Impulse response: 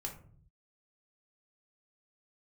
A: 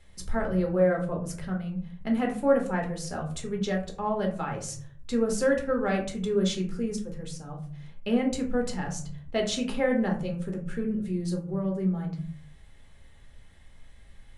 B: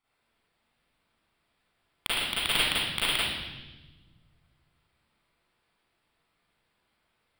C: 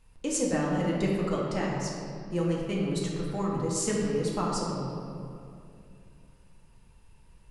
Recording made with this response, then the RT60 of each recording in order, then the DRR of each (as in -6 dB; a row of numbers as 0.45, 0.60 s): A; 0.50, 1.1, 2.5 s; 0.5, -10.0, -4.5 dB